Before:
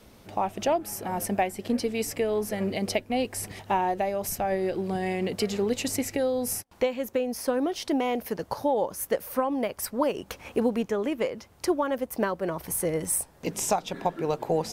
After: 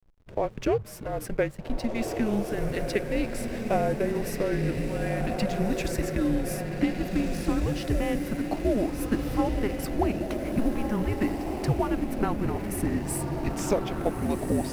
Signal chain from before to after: tone controls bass -3 dB, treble -7 dB; diffused feedback echo 1.639 s, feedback 52%, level -3.5 dB; frequency shift -220 Hz; backlash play -41 dBFS

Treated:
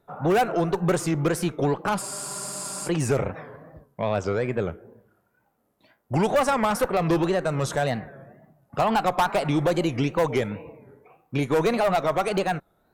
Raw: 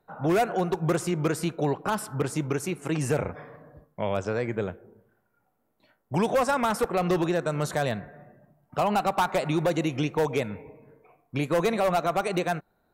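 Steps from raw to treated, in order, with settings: one diode to ground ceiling -18 dBFS; wow and flutter 140 cents; spectral freeze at 2.04, 0.83 s; gain +4 dB

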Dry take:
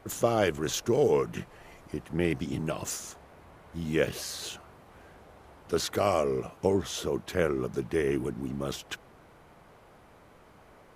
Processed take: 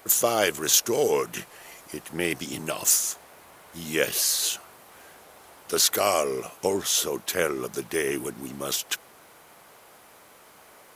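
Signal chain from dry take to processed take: RIAA curve recording; gain +4 dB

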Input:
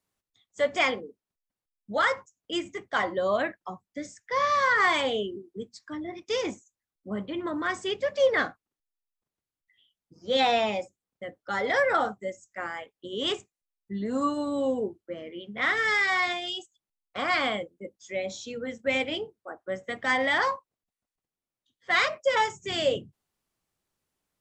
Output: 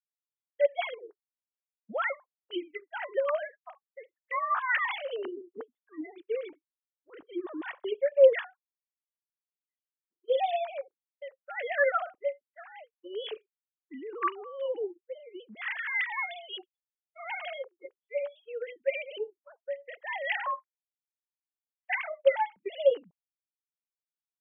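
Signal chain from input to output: sine-wave speech; expander -41 dBFS; gain -3.5 dB

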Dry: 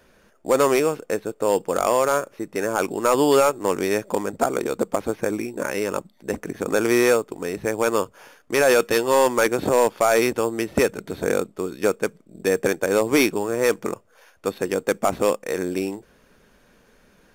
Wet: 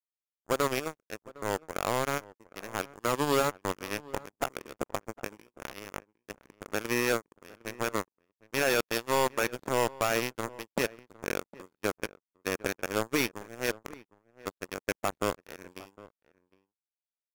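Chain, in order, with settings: power-law curve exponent 3; outdoor echo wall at 130 m, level -20 dB; gain -6 dB

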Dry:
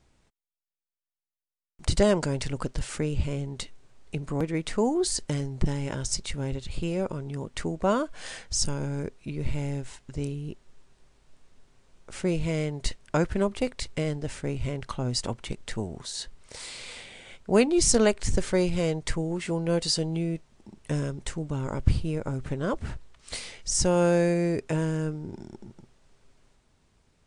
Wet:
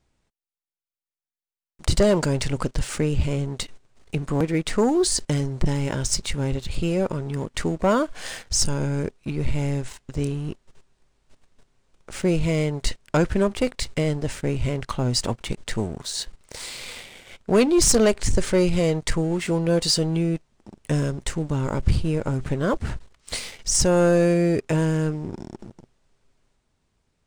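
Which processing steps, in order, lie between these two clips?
sample leveller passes 2; gain -1.5 dB

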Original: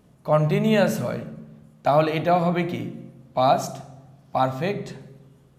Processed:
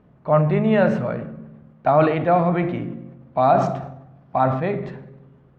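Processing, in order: Chebyshev low-pass 1700 Hz, order 2; sustainer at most 61 dB/s; gain +2.5 dB

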